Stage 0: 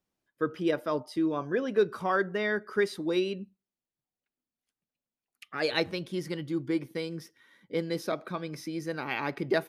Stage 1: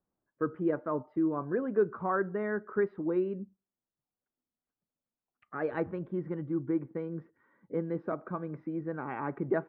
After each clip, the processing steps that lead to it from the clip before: low-pass 1.4 kHz 24 dB/octave; dynamic bell 610 Hz, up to -4 dB, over -38 dBFS, Q 1.3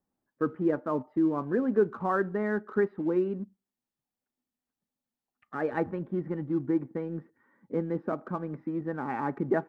small resonant body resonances 240/820/1800 Hz, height 7 dB; in parallel at -11.5 dB: crossover distortion -44 dBFS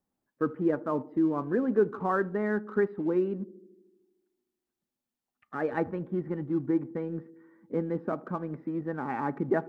band-passed feedback delay 76 ms, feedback 74%, band-pass 310 Hz, level -18.5 dB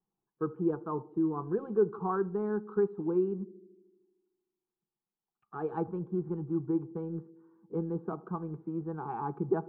distance through air 480 m; static phaser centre 390 Hz, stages 8

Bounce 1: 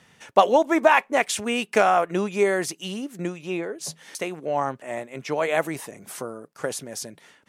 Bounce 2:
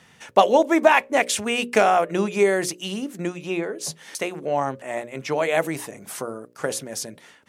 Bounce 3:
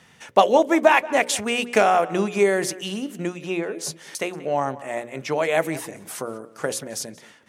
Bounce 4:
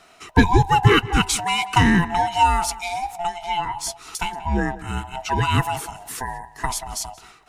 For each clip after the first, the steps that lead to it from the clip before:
hum notches 60/120/180/240/300/360/420/480/540/600 Hz; dynamic bell 1.2 kHz, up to -4 dB, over -30 dBFS, Q 1.2; trim +3 dB
tape echo 182 ms, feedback 28%, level -17 dB, low-pass 4.2 kHz
split-band scrambler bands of 500 Hz; in parallel at -11 dB: saturation -11.5 dBFS, distortion -14 dB

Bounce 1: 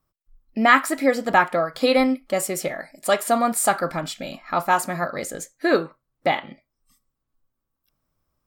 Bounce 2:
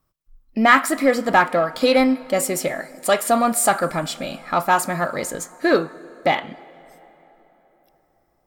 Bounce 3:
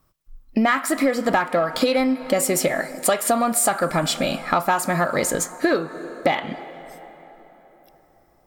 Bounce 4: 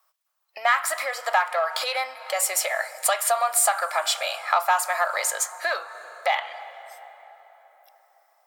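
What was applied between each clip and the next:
in parallel at -5.5 dB: saturation -19 dBFS, distortion -8 dB; on the sum: plate-style reverb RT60 4.2 s, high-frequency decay 0.6×, DRR 19.5 dB
compression 12:1, threshold -23 dBFS, peak gain reduction 15.5 dB; trim +7 dB
steep high-pass 660 Hz 36 dB/octave

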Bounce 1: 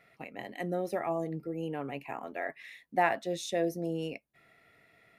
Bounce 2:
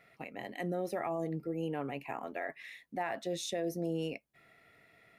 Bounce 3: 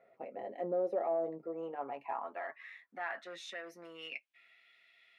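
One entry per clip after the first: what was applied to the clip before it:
peak limiter -26 dBFS, peak gain reduction 12 dB
comb of notches 150 Hz; saturation -29 dBFS, distortion -18 dB; band-pass sweep 550 Hz -> 3.2 kHz, 0.99–4.71 s; trim +7.5 dB

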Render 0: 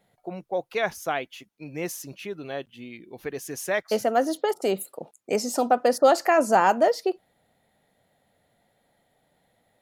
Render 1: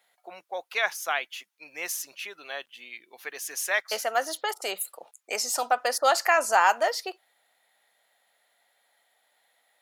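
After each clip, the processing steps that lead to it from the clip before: high-pass 1.1 kHz 12 dB/octave; trim +4.5 dB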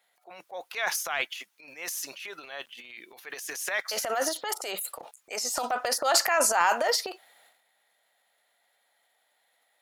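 transient shaper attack -5 dB, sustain +12 dB; trim -2.5 dB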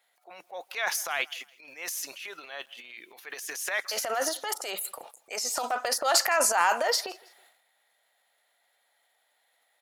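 bass shelf 210 Hz -8 dB; feedback delay 163 ms, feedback 33%, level -23.5 dB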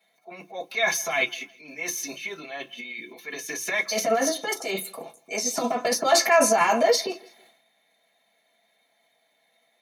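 reverberation RT60 0.15 s, pre-delay 3 ms, DRR -5.5 dB; trim -4.5 dB

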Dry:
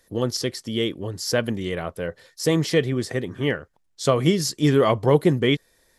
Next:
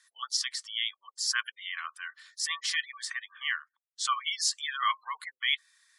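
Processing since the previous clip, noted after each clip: spectral gate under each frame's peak -30 dB strong; Chebyshev band-pass 1.1–10 kHz, order 5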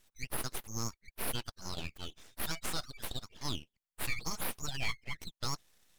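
peak limiter -21.5 dBFS, peak gain reduction 7.5 dB; full-wave rectifier; trim -1 dB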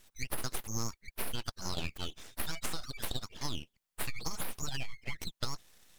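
transformer saturation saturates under 53 Hz; trim +6.5 dB

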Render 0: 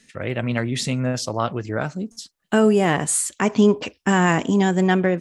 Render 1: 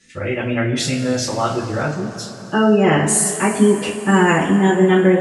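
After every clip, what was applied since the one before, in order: spectral gate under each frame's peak -30 dB strong; two-slope reverb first 0.29 s, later 3.5 s, from -18 dB, DRR -9 dB; trim -4.5 dB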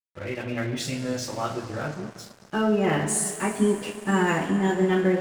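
crossover distortion -33 dBFS; trim -8 dB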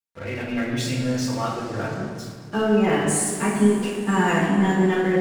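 simulated room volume 1100 m³, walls mixed, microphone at 1.7 m

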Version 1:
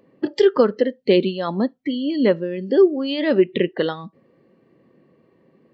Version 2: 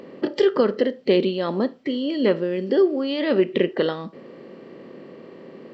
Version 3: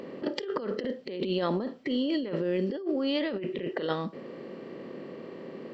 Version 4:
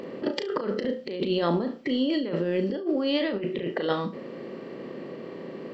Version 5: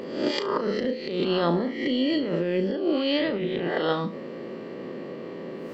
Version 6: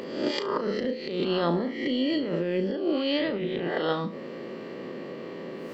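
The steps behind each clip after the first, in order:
spectral levelling over time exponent 0.6; trim -5 dB
compressor with a negative ratio -26 dBFS, ratio -1; trim -4.5 dB
flutter echo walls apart 6 m, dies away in 0.23 s; trim +3 dB
reverse spectral sustain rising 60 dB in 0.68 s
tape noise reduction on one side only encoder only; trim -2 dB

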